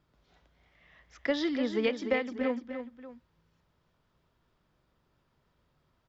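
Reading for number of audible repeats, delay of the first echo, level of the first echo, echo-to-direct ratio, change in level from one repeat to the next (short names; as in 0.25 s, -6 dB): 2, 0.296 s, -9.0 dB, -8.0 dB, -7.0 dB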